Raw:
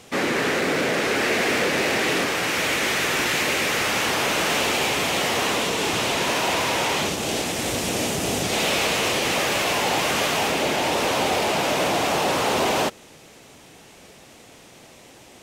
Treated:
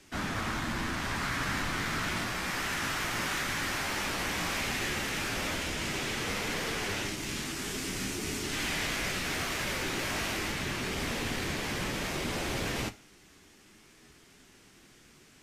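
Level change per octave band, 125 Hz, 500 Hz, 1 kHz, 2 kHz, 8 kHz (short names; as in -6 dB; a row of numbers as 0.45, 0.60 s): -4.5, -15.5, -12.5, -9.5, -10.0 dB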